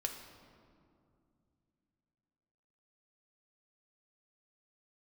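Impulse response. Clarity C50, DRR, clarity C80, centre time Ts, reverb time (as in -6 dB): 6.5 dB, 3.0 dB, 8.0 dB, 38 ms, 2.4 s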